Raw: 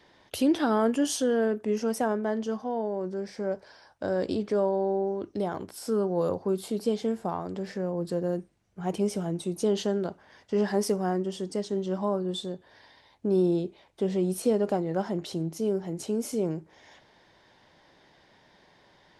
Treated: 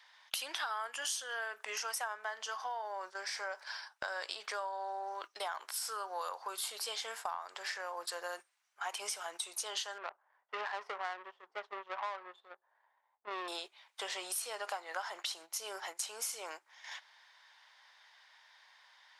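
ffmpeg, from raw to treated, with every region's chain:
-filter_complex "[0:a]asettb=1/sr,asplit=3[a][b][c];[a]atrim=end=9.984[d];[b]atrim=start=9.98:end=13.48,asetpts=PTS-STARTPTS,afade=t=in:d=0.004:c=qsin,afade=t=out:st=3.496:d=0.004:c=qsin,highshelf=f=3.1k:g=-12,adynamicsmooth=sensitivity=3.5:basefreq=660[e];[c]atrim=start=13.476[f];[d][e]acrossfade=d=0.004:c1=hsin:c2=qsin[g];[g][f]acrossfade=d=0.004:c1=qsin:c2=hsin,highpass=f=1k:w=0.5412,highpass=f=1k:w=1.3066,agate=range=-12dB:threshold=-55dB:ratio=16:detection=peak,acompressor=threshold=-49dB:ratio=6,volume=12.5dB"

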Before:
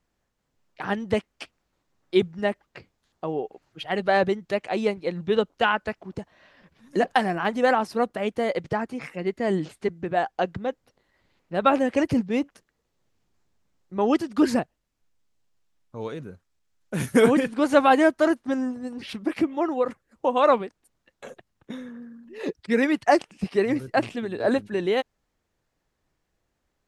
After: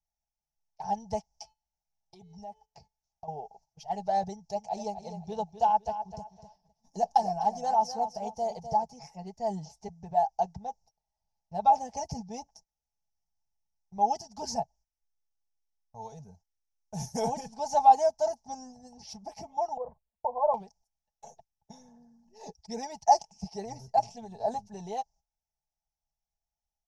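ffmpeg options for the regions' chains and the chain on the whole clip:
-filter_complex "[0:a]asettb=1/sr,asplit=3[a][b][c];[a]atrim=end=1.294[d];[b]atrim=start=1.29:end=3.28,asetpts=PTS-STARTPTS,afade=t=in:d=0.004:c=qsin,afade=t=out:st=1.986:d=0.004:c=qsin,bandreject=f=433.9:t=h:w=4,bandreject=f=867.8:t=h:w=4,bandreject=f=1.3017k:t=h:w=4,bandreject=f=1.7356k:t=h:w=4,bandreject=f=2.1695k:t=h:w=4,bandreject=f=2.6034k:t=h:w=4,bandreject=f=3.0373k:t=h:w=4,bandreject=f=3.4712k:t=h:w=4,bandreject=f=3.9051k:t=h:w=4,bandreject=f=4.339k:t=h:w=4,acompressor=threshold=-34dB:ratio=6:attack=3.2:release=140:knee=1:detection=peak[e];[c]atrim=start=3.276[f];[d][e]acrossfade=d=0.004:c1=hsin:c2=qsin[g];[g][f]acrossfade=d=0.004:c1=qsin:c2=hsin,asettb=1/sr,asplit=3[h][i][j];[h]atrim=end=4.304[k];[i]atrim=start=4.3:end=8.87,asetpts=PTS-STARTPTS,afade=t=in:d=0.004:c=qsin,afade=t=out:st=4.566:d=0.004:c=qsin,equalizer=f=1.9k:w=4.2:g=-6,aecho=1:1:253|506|759:0.299|0.0716|0.0172,atrim=end_sample=201537[l];[j]atrim=start=8.866[m];[k][l]acrossfade=d=0.004:c1=hsin:c2=qsin[n];[n][m]acrossfade=d=0.004:c1=qsin:c2=hsin,asettb=1/sr,asplit=3[o][p][q];[o]atrim=end=19.774[r];[p]atrim=start=19.77:end=20.54,asetpts=PTS-STARTPTS,afade=t=in:d=0.004:c=qsin,afade=t=out:st=0.766:d=0.004:c=qsin,lowpass=f=1.2k:w=0.5412,lowpass=f=1.2k:w=1.3066,agate=range=-12dB:threshold=-55dB:ratio=16:release=100:detection=peak,aecho=1:1:1.9:0.64,atrim=end_sample=33957[s];[q]atrim=start=20.536[t];[r][s]acrossfade=d=0.004:c1=hsin:c2=qsin[u];[u][t]acrossfade=d=0.004:c1=qsin:c2=hsin,aecho=1:1:4.6:0.71,agate=range=-14dB:threshold=-48dB:ratio=16:detection=peak,firequalizer=gain_entry='entry(120,0);entry(270,-25);entry(500,-16);entry(810,7);entry(1200,-29);entry(3700,-18);entry(5600,9);entry(8400,-13)':delay=0.05:min_phase=1,volume=-2dB"

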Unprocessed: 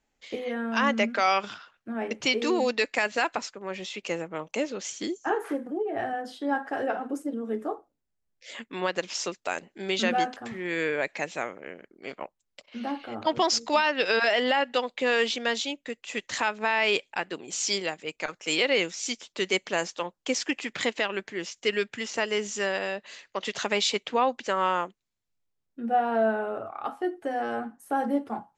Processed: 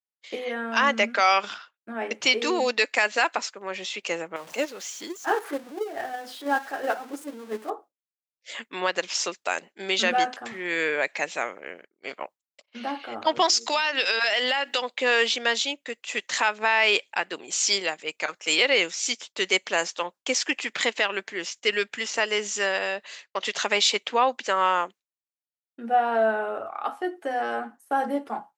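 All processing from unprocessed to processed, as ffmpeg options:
-filter_complex "[0:a]asettb=1/sr,asplit=3[a][b][c];[a]atrim=end=4.364[d];[b]atrim=start=4.36:end=7.7,asetpts=PTS-STARTPTS,afade=t=in:d=0.004:c=qsin,afade=t=out:st=3.336:d=0.004:c=qsin,aeval=exprs='val(0)+0.5*0.0141*sgn(val(0))':c=same,agate=range=-8dB:threshold=-28dB:ratio=16:release=100:detection=peak,acompressor=mode=upward:threshold=-39dB:ratio=2.5:attack=3.2:release=140:knee=2.83:detection=peak[e];[c]atrim=start=7.696[f];[d][e]acrossfade=d=0.004:c1=hsin:c2=qsin[g];[g][f]acrossfade=d=0.004:c1=qsin:c2=hsin,asettb=1/sr,asplit=3[h][i][j];[h]atrim=end=13.464[k];[i]atrim=start=13.46:end=14.82,asetpts=PTS-STARTPTS,afade=t=in:d=0.004:c=qsin,afade=t=out:st=1.356:d=0.004:c=qsin,highshelf=f=2.3k:g=9.5,bandreject=f=60:t=h:w=6,bandreject=f=120:t=h:w=6,bandreject=f=180:t=h:w=6,bandreject=f=240:t=h:w=6,bandreject=f=300:t=h:w=6,bandreject=f=360:t=h:w=6,acompressor=threshold=-24dB:ratio=4:attack=3.2:release=140:knee=1:detection=peak[l];[j]atrim=start=14.816[m];[k][l]acrossfade=d=0.004:c1=hsin:c2=qsin[n];[n][m]acrossfade=d=0.004:c1=qsin:c2=hsin,agate=range=-33dB:threshold=-42dB:ratio=3:detection=peak,highpass=f=630:p=1,acontrast=30"

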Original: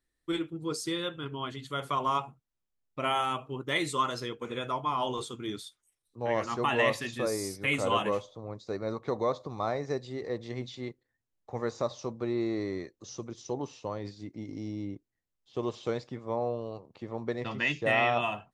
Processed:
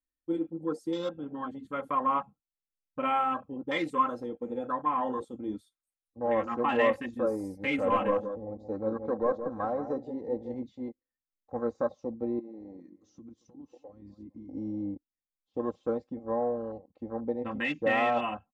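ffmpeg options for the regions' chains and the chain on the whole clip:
-filter_complex "[0:a]asettb=1/sr,asplit=3[a][b][c];[a]atrim=end=7.754[d];[b]atrim=start=7.75:end=10.54,asetpts=PTS-STARTPTS,afade=t=in:d=0.004:c=qsin,afade=t=out:st=2.786:d=0.004:c=qsin,aeval=exprs='clip(val(0),-1,0.0668)':c=same,asplit=2[e][f];[f]adelay=173,lowpass=f=880:p=1,volume=-7.5dB,asplit=2[g][h];[h]adelay=173,lowpass=f=880:p=1,volume=0.3,asplit=2[i][j];[j]adelay=173,lowpass=f=880:p=1,volume=0.3,asplit=2[k][l];[l]adelay=173,lowpass=f=880:p=1,volume=0.3[m];[e][g][i][k][m]amix=inputs=5:normalize=0,atrim=end_sample=123039[n];[c]atrim=start=10.536[o];[d][n]acrossfade=d=0.004:c1=hsin:c2=qsin[p];[p][o]acrossfade=d=0.004:c1=qsin:c2=hsin,asettb=1/sr,asplit=3[q][r][s];[q]atrim=end=12.394[t];[r]atrim=start=12.39:end=14.54,asetpts=PTS-STARTPTS,afade=t=in:d=0.004:c=qsin,afade=t=out:st=2.146:d=0.004:c=qsin,asplit=2[u][v];[v]adelay=226,lowpass=f=1.2k:p=1,volume=-18.5dB,asplit=2[w][x];[x]adelay=226,lowpass=f=1.2k:p=1,volume=0.42,asplit=2[y][z];[z]adelay=226,lowpass=f=1.2k:p=1,volume=0.42[aa];[u][w][y][aa]amix=inputs=4:normalize=0,atrim=end_sample=94815,acompressor=threshold=-41dB:ratio=16:attack=3.2:release=140:knee=1:detection=peak[ab];[s]atrim=start=14.536[ac];[t][ab]acrossfade=d=0.004:c1=hsin:c2=qsin[ad];[ad][ac]acrossfade=d=0.004:c1=qsin:c2=hsin,afwtdn=0.0141,equalizer=f=4.5k:t=o:w=2.2:g=-9,aecho=1:1:3.8:0.78"

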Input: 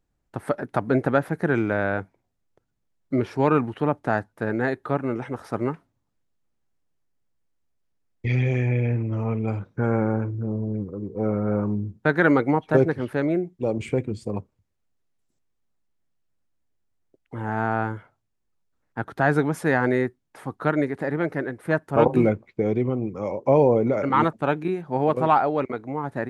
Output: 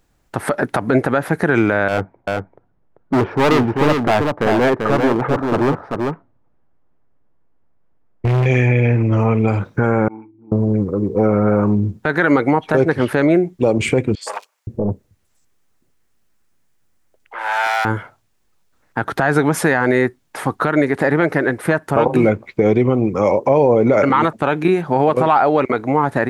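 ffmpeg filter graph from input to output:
-filter_complex "[0:a]asettb=1/sr,asplit=3[a][b][c];[a]atrim=end=1.884[d];[b]atrim=start=1.88:end=8.46,asetpts=PTS-STARTPTS,afade=t=in:d=0.004:c=qsin,afade=t=out:st=6.576:d=0.004:c=qsin,lowpass=1.1k,asoftclip=type=hard:threshold=-25.5dB,aecho=1:1:390:0.596,atrim=end_sample=290178[e];[c]atrim=start=8.456[f];[d][e]acrossfade=d=0.004:c1=hsin:c2=qsin[g];[g][f]acrossfade=d=0.004:c1=qsin:c2=hsin,asettb=1/sr,asplit=3[h][i][j];[h]atrim=end=10.084[k];[i]atrim=start=10.08:end=10.52,asetpts=PTS-STARTPTS,afade=t=in:d=0.004:c=qsin,afade=t=out:st=0.436:d=0.004:c=qsin,agate=range=-33dB:threshold=-17dB:ratio=3:release=100:detection=peak,asplit=3[l][m][n];[l]bandpass=f=300:t=q:w=8,volume=0dB[o];[m]bandpass=f=870:t=q:w=8,volume=-6dB[p];[n]bandpass=f=2.24k:t=q:w=8,volume=-9dB[q];[o][p][q]amix=inputs=3:normalize=0,acompressor=mode=upward:threshold=-55dB:ratio=2.5:attack=3.2:release=140:knee=2.83:detection=peak[r];[j]atrim=start=10.516[s];[k][r]acrossfade=d=0.004:c1=hsin:c2=qsin[t];[t][s]acrossfade=d=0.004:c1=qsin:c2=hsin,asettb=1/sr,asplit=3[u][v][w];[u]atrim=end=14.154[x];[v]atrim=start=14.15:end=17.85,asetpts=PTS-STARTPTS,afade=t=in:d=0.004:c=qsin,afade=t=out:st=3.696:d=0.004:c=qsin,asoftclip=type=hard:threshold=-26.5dB,acrossover=split=670|3600[y][z][aa];[aa]adelay=60[ab];[y]adelay=520[ac];[ac][z][ab]amix=inputs=3:normalize=0,atrim=end_sample=163170[ad];[w]atrim=start=17.846[ae];[x][ad]acrossfade=d=0.004:c1=hsin:c2=qsin[af];[af][ae]acrossfade=d=0.004:c1=qsin:c2=hsin,acompressor=threshold=-25dB:ratio=2.5,lowshelf=f=500:g=-6,alimiter=level_in=21dB:limit=-1dB:release=50:level=0:latency=1,volume=-3dB"

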